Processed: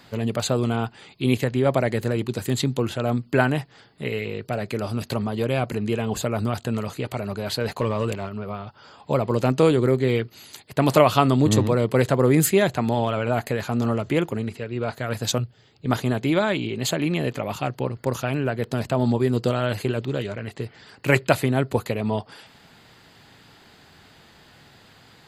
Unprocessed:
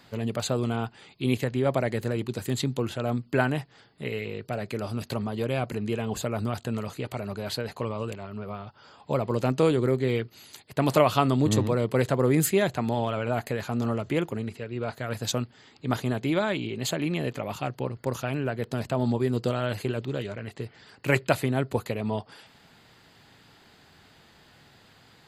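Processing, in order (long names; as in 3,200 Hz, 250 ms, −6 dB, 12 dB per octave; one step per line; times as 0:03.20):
0:07.61–0:08.29: leveller curve on the samples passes 1
0:15.38–0:15.86: octave-band graphic EQ 125/250/1,000/2,000/4,000/8,000 Hz +5/−12/−10/−8/−4/−11 dB
level +4.5 dB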